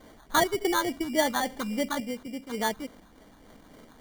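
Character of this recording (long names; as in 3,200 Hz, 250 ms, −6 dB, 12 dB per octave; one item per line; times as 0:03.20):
sample-and-hold tremolo 2 Hz
phaser sweep stages 4, 3.5 Hz, lowest notch 560–2,500 Hz
aliases and images of a low sample rate 2,600 Hz, jitter 0%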